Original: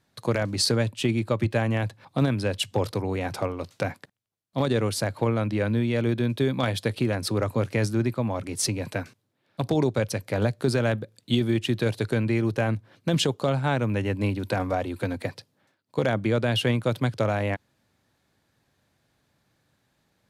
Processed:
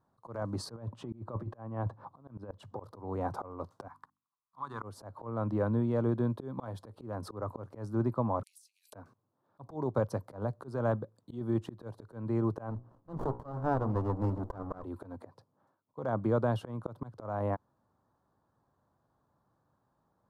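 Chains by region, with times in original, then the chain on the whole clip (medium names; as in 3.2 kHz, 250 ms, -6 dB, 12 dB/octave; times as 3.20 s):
0.76–2.80 s: low-pass 2.3 kHz 6 dB/octave + compressor with a negative ratio -28 dBFS, ratio -0.5
3.88–4.82 s: resonant low shelf 770 Hz -10.5 dB, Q 3 + hum notches 50/100/150/200/250/300 Hz
8.43–8.93 s: treble shelf 7.7 kHz +8.5 dB + compressor with a negative ratio -35 dBFS + steep high-pass 2.5 kHz 48 dB/octave
12.70–14.84 s: hum notches 60/120/180/240/300/360/420/480/540 Hz + sliding maximum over 33 samples
whole clip: resonant high shelf 1.6 kHz -13.5 dB, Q 3; slow attack 260 ms; trim -5.5 dB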